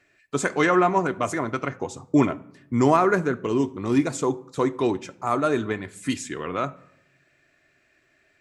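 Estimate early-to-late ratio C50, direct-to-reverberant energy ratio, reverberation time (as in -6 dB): 21.0 dB, 10.0 dB, 0.80 s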